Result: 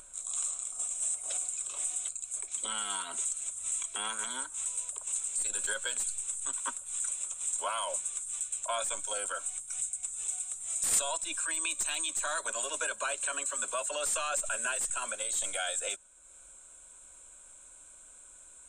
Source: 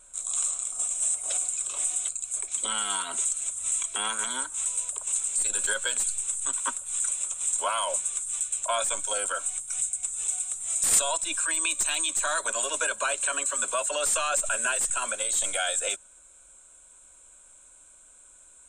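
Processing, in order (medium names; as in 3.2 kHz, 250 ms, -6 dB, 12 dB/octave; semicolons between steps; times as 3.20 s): upward compressor, threshold -39 dBFS; trim -6 dB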